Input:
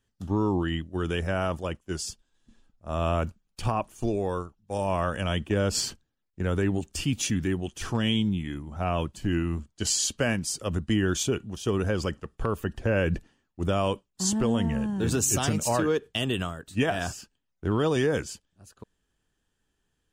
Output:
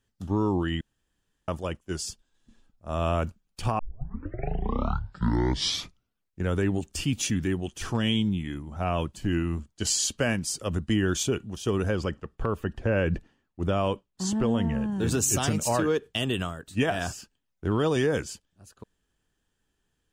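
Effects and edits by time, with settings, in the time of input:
0.81–1.48 s: room tone
3.79 s: tape start 2.66 s
11.95–14.92 s: treble shelf 5.7 kHz -11.5 dB

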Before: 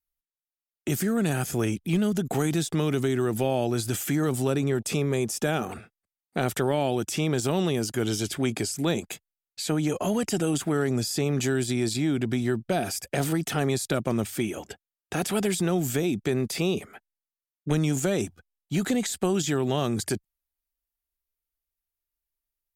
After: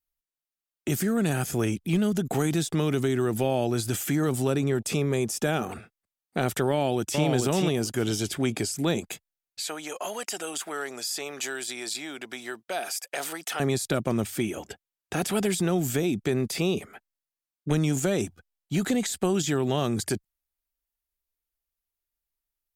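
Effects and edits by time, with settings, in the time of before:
6.70–7.24 s: echo throw 440 ms, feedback 15%, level -3.5 dB
9.63–13.60 s: high-pass 700 Hz

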